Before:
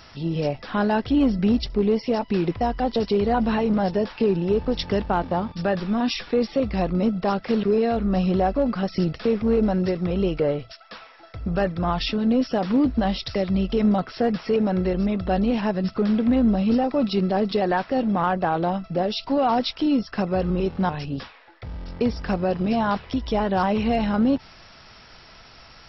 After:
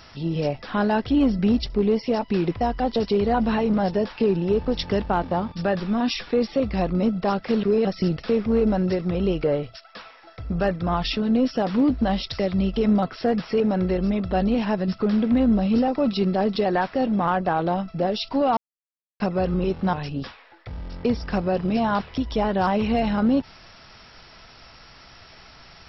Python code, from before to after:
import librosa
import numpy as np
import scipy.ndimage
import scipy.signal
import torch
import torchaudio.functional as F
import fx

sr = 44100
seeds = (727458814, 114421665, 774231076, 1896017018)

y = fx.edit(x, sr, fx.cut(start_s=7.85, length_s=0.96),
    fx.silence(start_s=19.53, length_s=0.63), tone=tone)